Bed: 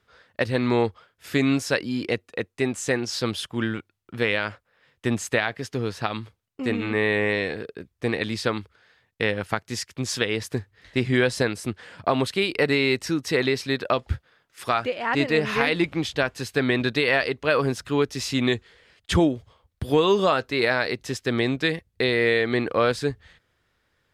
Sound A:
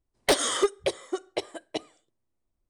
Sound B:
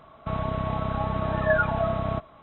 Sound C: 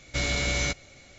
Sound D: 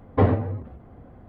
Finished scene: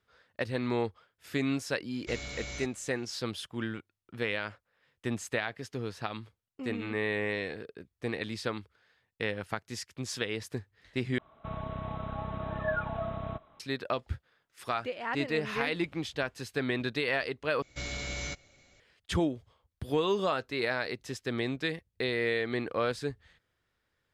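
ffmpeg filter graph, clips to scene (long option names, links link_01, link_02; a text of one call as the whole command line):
ffmpeg -i bed.wav -i cue0.wav -i cue1.wav -i cue2.wav -filter_complex "[3:a]asplit=2[link_01][link_02];[0:a]volume=-9dB,asplit=3[link_03][link_04][link_05];[link_03]atrim=end=11.184[link_06];[2:a]atrim=end=2.42,asetpts=PTS-STARTPTS,volume=-9.5dB[link_07];[link_04]atrim=start=13.596:end=17.624[link_08];[link_02]atrim=end=1.18,asetpts=PTS-STARTPTS,volume=-10dB[link_09];[link_05]atrim=start=18.796[link_10];[link_01]atrim=end=1.18,asetpts=PTS-STARTPTS,volume=-13.5dB,afade=type=in:duration=0.004:curve=hsin,afade=type=out:start_time=1.176:duration=0.004:curve=hsin,adelay=1930[link_11];[link_06][link_07]acrossfade=duration=0.004:curve1=hsin:curve2=hsin[link_12];[link_12][link_08]acrossfade=duration=0.004:curve1=hsin:curve2=hsin[link_13];[link_13][link_09]acrossfade=duration=0.004:curve1=hsin:curve2=hsin[link_14];[link_14][link_10]acrossfade=duration=0.004:curve1=hsin:curve2=hsin[link_15];[link_15][link_11]amix=inputs=2:normalize=0" out.wav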